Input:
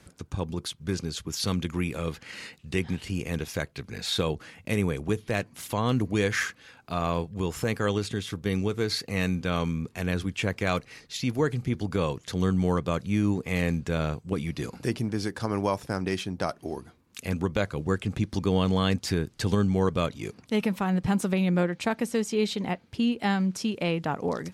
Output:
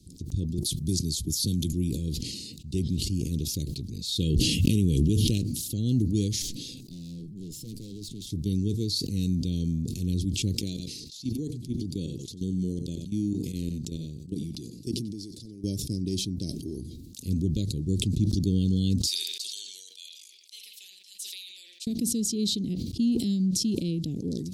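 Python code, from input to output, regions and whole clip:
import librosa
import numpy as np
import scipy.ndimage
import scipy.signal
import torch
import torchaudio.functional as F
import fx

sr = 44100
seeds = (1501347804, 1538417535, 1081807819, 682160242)

y = fx.chain(x, sr, fx.peak_eq(hz=11000.0, db=9.0, octaves=1.1),
    fx.notch(hz=2800.0, q=29.0),
    fx.band_squash(depth_pct=70), at=(0.58, 1.73))
y = fx.chain(y, sr, fx.peak_eq(hz=2900.0, db=11.5, octaves=0.36),
    fx.env_flatten(amount_pct=100), at=(4.2, 5.38))
y = fx.chain(y, sr, fx.highpass(hz=120.0, slope=24),
    fx.tube_stage(drive_db=35.0, bias=0.55), at=(6.42, 8.27))
y = fx.chain(y, sr, fx.highpass(hz=190.0, slope=6),
    fx.level_steps(step_db=14),
    fx.echo_single(ms=92, db=-16.0), at=(10.55, 15.64))
y = fx.chain(y, sr, fx.highpass(hz=1400.0, slope=24),
    fx.echo_bbd(ms=86, stages=2048, feedback_pct=57, wet_db=-7), at=(19.07, 21.87))
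y = scipy.signal.sosfilt(scipy.signal.ellip(3, 1.0, 80, [330.0, 4000.0], 'bandstop', fs=sr, output='sos'), y)
y = fx.low_shelf(y, sr, hz=110.0, db=5.5)
y = fx.sustainer(y, sr, db_per_s=33.0)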